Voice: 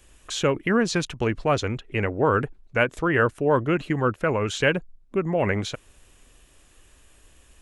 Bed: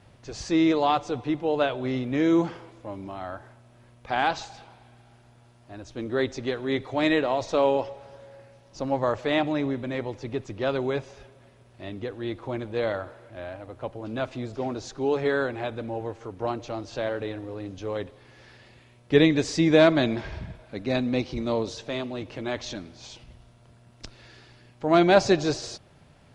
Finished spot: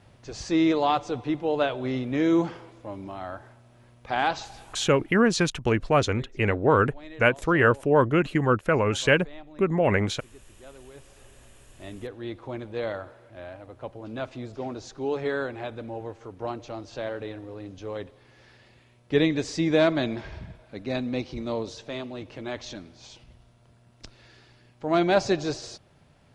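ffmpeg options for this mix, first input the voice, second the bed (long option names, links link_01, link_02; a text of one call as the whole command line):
ffmpeg -i stem1.wav -i stem2.wav -filter_complex "[0:a]adelay=4450,volume=1dB[link_01];[1:a]volume=17.5dB,afade=type=out:start_time=5.01:duration=0.25:silence=0.0891251,afade=type=in:start_time=10.94:duration=0.48:silence=0.125893[link_02];[link_01][link_02]amix=inputs=2:normalize=0" out.wav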